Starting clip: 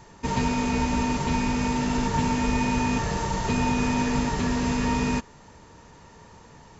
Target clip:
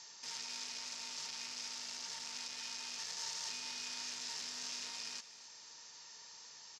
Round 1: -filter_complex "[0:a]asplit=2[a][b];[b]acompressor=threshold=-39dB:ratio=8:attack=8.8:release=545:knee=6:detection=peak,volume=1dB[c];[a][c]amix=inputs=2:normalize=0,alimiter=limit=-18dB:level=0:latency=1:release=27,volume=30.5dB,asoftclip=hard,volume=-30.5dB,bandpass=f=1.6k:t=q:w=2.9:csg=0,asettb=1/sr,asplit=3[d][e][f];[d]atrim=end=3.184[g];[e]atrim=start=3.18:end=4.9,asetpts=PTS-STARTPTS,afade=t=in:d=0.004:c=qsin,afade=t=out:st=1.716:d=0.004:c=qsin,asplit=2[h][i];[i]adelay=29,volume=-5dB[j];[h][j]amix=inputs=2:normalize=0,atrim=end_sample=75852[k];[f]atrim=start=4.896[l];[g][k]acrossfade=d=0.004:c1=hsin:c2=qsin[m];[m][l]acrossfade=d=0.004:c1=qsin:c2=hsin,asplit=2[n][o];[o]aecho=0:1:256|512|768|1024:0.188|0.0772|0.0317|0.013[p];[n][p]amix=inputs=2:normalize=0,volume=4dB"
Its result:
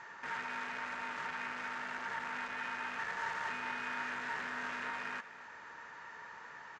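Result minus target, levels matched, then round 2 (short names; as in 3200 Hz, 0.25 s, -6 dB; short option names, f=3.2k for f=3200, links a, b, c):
4000 Hz band -12.0 dB
-filter_complex "[0:a]asplit=2[a][b];[b]acompressor=threshold=-39dB:ratio=8:attack=8.8:release=545:knee=6:detection=peak,volume=1dB[c];[a][c]amix=inputs=2:normalize=0,alimiter=limit=-18dB:level=0:latency=1:release=27,volume=30.5dB,asoftclip=hard,volume=-30.5dB,bandpass=f=5.2k:t=q:w=2.9:csg=0,asettb=1/sr,asplit=3[d][e][f];[d]atrim=end=3.184[g];[e]atrim=start=3.18:end=4.9,asetpts=PTS-STARTPTS,afade=t=in:d=0.004:c=qsin,afade=t=out:st=1.716:d=0.004:c=qsin,asplit=2[h][i];[i]adelay=29,volume=-5dB[j];[h][j]amix=inputs=2:normalize=0,atrim=end_sample=75852[k];[f]atrim=start=4.896[l];[g][k]acrossfade=d=0.004:c1=hsin:c2=qsin[m];[m][l]acrossfade=d=0.004:c1=qsin:c2=hsin,asplit=2[n][o];[o]aecho=0:1:256|512|768|1024:0.188|0.0772|0.0317|0.013[p];[n][p]amix=inputs=2:normalize=0,volume=4dB"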